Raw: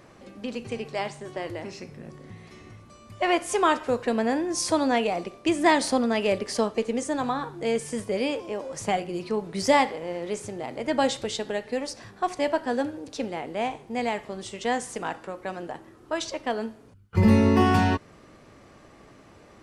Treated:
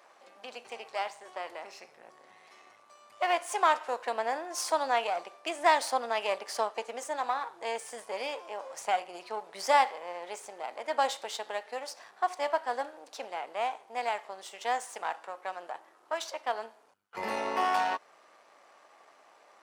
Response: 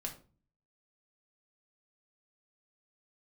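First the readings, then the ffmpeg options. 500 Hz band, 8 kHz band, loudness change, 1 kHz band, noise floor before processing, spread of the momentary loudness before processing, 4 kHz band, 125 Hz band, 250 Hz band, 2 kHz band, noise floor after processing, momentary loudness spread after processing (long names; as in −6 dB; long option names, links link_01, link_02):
−7.5 dB, −6.0 dB, −6.0 dB, −1.5 dB, −52 dBFS, 14 LU, −5.0 dB, below −35 dB, −22.0 dB, −4.0 dB, −61 dBFS, 15 LU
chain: -af "aeval=exprs='if(lt(val(0),0),0.447*val(0),val(0))':channel_layout=same,highpass=frequency=760:width_type=q:width=1.7,volume=-3.5dB"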